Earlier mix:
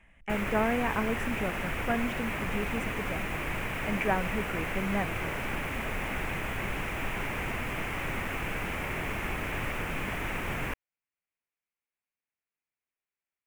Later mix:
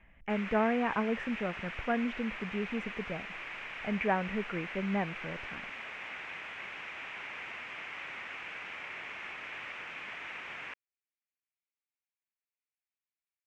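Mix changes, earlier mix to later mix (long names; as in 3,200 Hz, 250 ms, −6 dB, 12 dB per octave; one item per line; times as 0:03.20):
background: add resonant band-pass 5,100 Hz, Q 0.51
master: add high-frequency loss of the air 180 metres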